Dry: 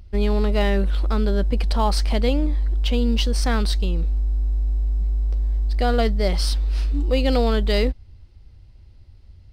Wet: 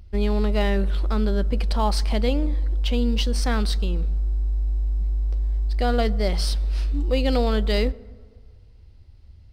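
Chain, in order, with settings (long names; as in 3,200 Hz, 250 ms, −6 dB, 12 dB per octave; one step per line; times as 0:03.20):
on a send: low-shelf EQ 460 Hz +11 dB + convolution reverb RT60 1.8 s, pre-delay 7 ms, DRR 20 dB
on the sum: level −2 dB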